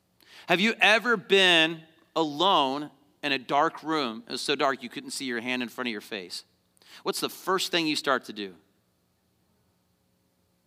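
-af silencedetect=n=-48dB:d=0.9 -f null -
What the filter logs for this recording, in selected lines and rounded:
silence_start: 8.57
silence_end: 10.66 | silence_duration: 2.09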